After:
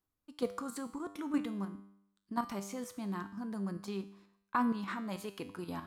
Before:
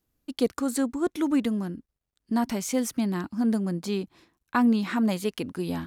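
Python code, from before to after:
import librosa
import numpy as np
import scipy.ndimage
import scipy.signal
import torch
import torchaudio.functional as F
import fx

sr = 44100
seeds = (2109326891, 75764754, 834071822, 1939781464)

y = fx.peak_eq(x, sr, hz=1100.0, db=9.5, octaves=0.85)
y = fx.level_steps(y, sr, step_db=10)
y = fx.comb_fb(y, sr, f0_hz=99.0, decay_s=0.7, harmonics='all', damping=0.0, mix_pct=70)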